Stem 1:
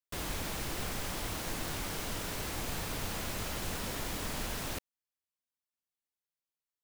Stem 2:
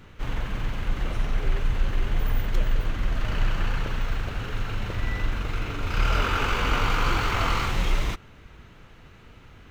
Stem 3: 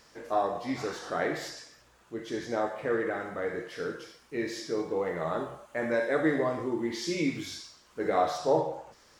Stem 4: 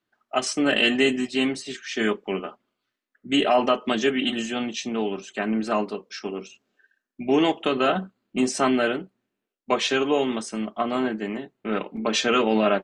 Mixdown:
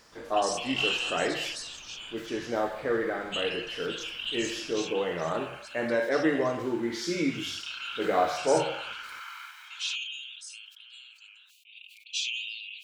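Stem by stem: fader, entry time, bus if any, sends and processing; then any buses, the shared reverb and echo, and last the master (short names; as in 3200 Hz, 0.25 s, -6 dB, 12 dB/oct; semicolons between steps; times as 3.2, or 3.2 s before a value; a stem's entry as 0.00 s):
-10.5 dB, 0.00 s, no send, rippled Chebyshev low-pass 4900 Hz, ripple 9 dB
-12.0 dB, 1.80 s, no send, steep high-pass 1100 Hz 48 dB/oct; tilt -3 dB/oct; comb 1.3 ms
+1.0 dB, 0.00 s, no send, notches 50/100/150 Hz
-7.0 dB, 0.00 s, no send, steep high-pass 2500 Hz 96 dB/oct; sustainer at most 30 dB/s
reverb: off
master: notches 50/100/150 Hz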